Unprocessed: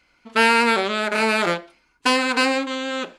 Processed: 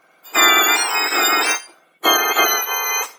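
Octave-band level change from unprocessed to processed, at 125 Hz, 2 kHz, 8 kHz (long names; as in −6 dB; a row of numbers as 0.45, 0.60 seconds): below −15 dB, +3.5 dB, +16.0 dB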